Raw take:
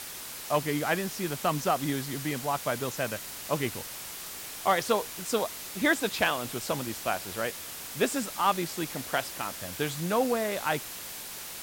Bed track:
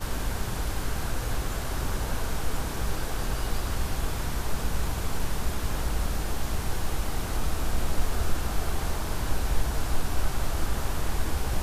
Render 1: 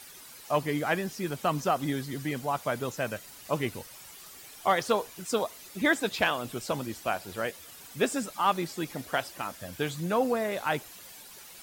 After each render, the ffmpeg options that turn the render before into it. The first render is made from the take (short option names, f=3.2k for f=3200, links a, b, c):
-af "afftdn=nr=11:nf=-41"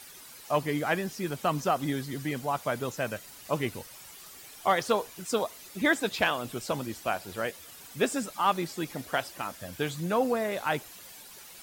-af anull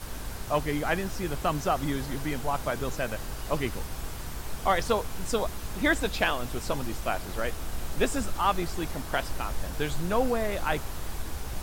-filter_complex "[1:a]volume=-7.5dB[a];[0:a][a]amix=inputs=2:normalize=0"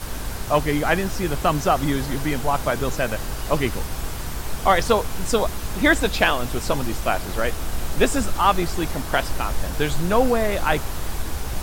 -af "volume=7.5dB"